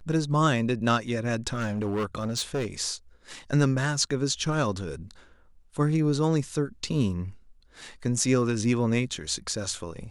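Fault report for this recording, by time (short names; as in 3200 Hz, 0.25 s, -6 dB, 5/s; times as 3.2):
1.47–2.66 clipped -24 dBFS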